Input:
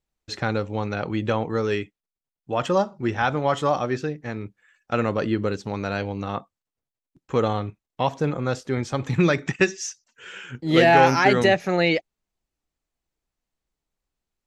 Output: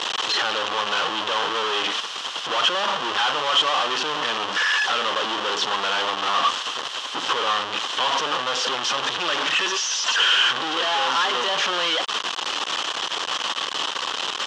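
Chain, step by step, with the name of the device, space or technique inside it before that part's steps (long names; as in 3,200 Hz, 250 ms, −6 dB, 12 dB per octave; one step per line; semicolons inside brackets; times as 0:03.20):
home computer beeper (sign of each sample alone; loudspeaker in its box 660–5,400 Hz, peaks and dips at 670 Hz −5 dB, 1,100 Hz +6 dB, 2,200 Hz −8 dB, 3,100 Hz +10 dB, 4,600 Hz −4 dB)
level +5 dB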